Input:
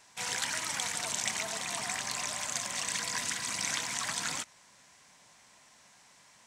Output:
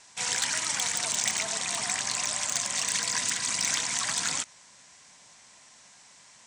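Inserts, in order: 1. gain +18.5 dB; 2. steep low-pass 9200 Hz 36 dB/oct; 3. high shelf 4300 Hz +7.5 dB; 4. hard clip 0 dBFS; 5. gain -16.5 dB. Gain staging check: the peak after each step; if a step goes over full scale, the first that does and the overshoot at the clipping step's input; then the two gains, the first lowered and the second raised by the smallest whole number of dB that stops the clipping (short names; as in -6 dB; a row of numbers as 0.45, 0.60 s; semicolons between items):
+6.0, +4.5, +9.5, 0.0, -16.5 dBFS; step 1, 9.5 dB; step 1 +8.5 dB, step 5 -6.5 dB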